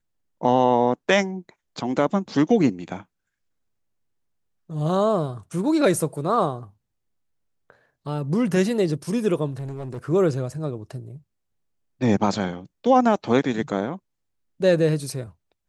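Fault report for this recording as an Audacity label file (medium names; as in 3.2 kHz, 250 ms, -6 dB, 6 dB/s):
9.510000	9.980000	clipped -28 dBFS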